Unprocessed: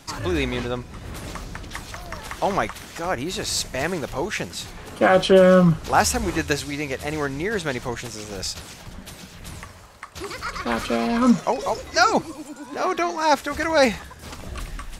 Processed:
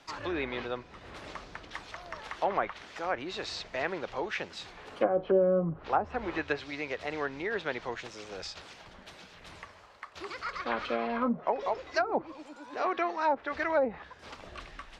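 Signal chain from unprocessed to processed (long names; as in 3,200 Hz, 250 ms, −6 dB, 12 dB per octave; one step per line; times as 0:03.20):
treble cut that deepens with the level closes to 500 Hz, closed at −12.5 dBFS
three-way crossover with the lows and the highs turned down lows −12 dB, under 330 Hz, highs −18 dB, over 5,000 Hz
level −6 dB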